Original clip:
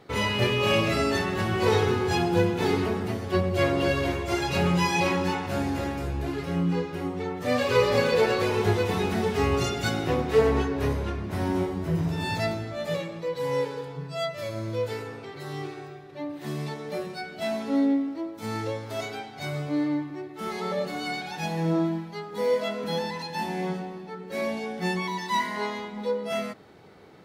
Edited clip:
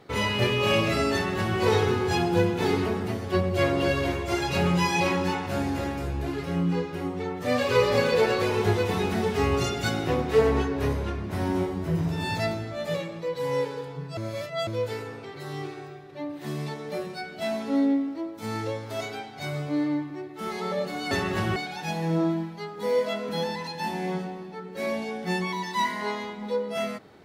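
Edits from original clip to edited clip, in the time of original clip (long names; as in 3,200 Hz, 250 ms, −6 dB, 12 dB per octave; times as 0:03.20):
0:01.13–0:01.58: duplicate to 0:21.11
0:14.17–0:14.67: reverse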